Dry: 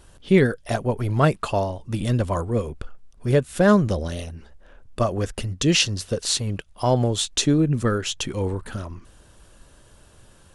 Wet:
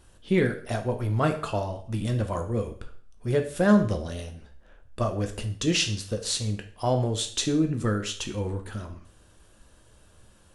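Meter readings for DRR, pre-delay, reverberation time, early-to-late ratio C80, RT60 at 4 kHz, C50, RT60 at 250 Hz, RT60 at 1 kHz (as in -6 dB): 5.0 dB, 4 ms, 0.50 s, 15.0 dB, 0.45 s, 11.0 dB, 0.55 s, 0.55 s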